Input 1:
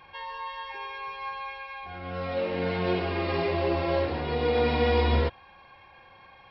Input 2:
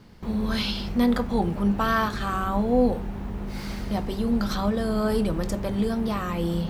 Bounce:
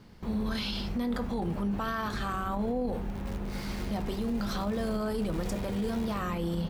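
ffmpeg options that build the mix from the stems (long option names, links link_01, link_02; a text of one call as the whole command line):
ffmpeg -i stem1.wav -i stem2.wav -filter_complex "[0:a]acrusher=bits=5:dc=4:mix=0:aa=0.000001,adelay=900,volume=-19dB[link_01];[1:a]volume=-3dB[link_02];[link_01][link_02]amix=inputs=2:normalize=0,alimiter=limit=-24dB:level=0:latency=1:release=22" out.wav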